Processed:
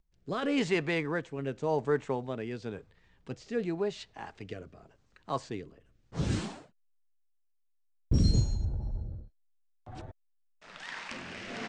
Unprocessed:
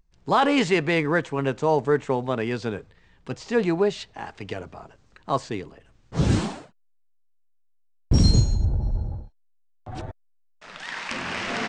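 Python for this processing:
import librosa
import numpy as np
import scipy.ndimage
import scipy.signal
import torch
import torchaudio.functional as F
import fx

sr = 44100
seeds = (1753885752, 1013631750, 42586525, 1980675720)

y = fx.rotary(x, sr, hz=0.9)
y = y * 10.0 ** (-7.0 / 20.0)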